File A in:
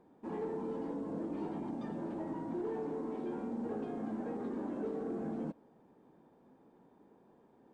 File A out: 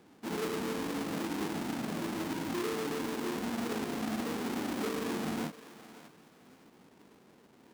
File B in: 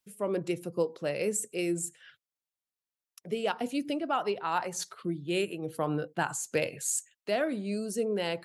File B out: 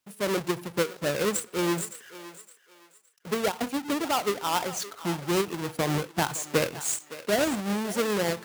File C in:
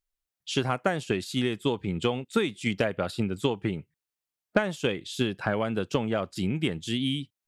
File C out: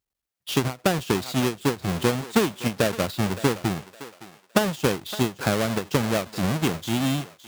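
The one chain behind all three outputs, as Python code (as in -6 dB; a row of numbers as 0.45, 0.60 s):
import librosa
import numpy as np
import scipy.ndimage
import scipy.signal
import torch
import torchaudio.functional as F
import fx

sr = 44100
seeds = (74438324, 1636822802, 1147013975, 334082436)

y = fx.halfwave_hold(x, sr)
y = scipy.signal.sosfilt(scipy.signal.butter(2, 59.0, 'highpass', fs=sr, output='sos'), y)
y = fx.echo_thinned(y, sr, ms=564, feedback_pct=31, hz=480.0, wet_db=-14)
y = fx.end_taper(y, sr, db_per_s=250.0)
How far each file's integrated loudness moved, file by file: +4.0, +4.0, +4.0 LU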